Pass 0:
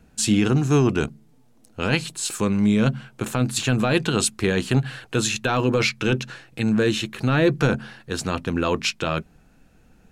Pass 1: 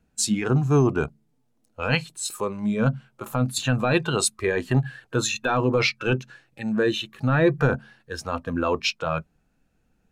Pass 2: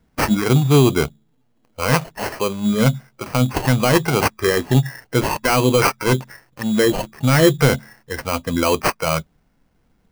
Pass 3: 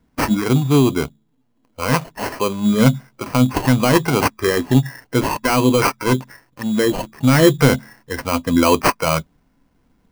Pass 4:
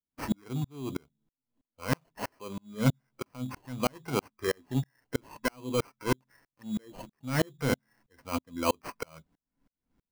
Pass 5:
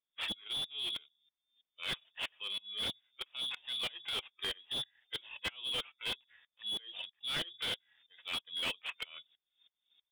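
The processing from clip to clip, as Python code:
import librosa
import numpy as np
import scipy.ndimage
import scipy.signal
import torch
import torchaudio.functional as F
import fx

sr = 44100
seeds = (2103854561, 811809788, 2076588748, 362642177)

y1 = fx.noise_reduce_blind(x, sr, reduce_db=13)
y2 = fx.sample_hold(y1, sr, seeds[0], rate_hz=3600.0, jitter_pct=0)
y2 = y2 * librosa.db_to_amplitude(6.0)
y3 = fx.rider(y2, sr, range_db=10, speed_s=2.0)
y3 = fx.small_body(y3, sr, hz=(270.0, 1000.0), ring_ms=45, db=7)
y3 = y3 * librosa.db_to_amplitude(-1.0)
y4 = fx.tremolo_decay(y3, sr, direction='swelling', hz=3.1, depth_db=39)
y4 = y4 * librosa.db_to_amplitude(-7.5)
y5 = fx.spec_quant(y4, sr, step_db=15)
y5 = fx.freq_invert(y5, sr, carrier_hz=3600)
y5 = fx.slew_limit(y5, sr, full_power_hz=54.0)
y5 = y5 * librosa.db_to_amplitude(1.0)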